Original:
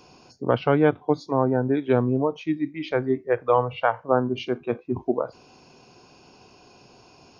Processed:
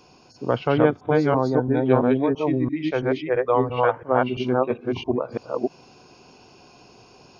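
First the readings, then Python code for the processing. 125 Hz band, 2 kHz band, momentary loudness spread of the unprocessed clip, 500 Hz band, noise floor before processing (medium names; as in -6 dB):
+2.0 dB, +2.0 dB, 7 LU, +2.0 dB, -54 dBFS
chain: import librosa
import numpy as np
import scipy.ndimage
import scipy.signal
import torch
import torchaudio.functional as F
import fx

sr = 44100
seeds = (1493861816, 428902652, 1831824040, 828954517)

y = fx.reverse_delay(x, sr, ms=336, wet_db=0.0)
y = y * librosa.db_to_amplitude(-1.0)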